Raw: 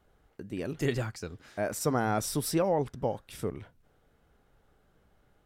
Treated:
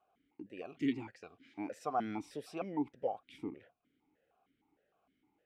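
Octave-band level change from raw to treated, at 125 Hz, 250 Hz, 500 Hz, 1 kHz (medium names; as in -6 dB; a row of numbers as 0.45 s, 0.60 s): -18.0 dB, -5.0 dB, -11.0 dB, -6.0 dB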